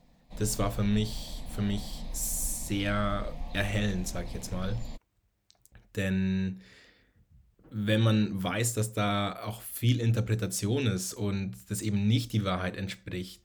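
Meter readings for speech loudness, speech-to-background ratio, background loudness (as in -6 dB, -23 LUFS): -30.5 LUFS, 13.0 dB, -43.5 LUFS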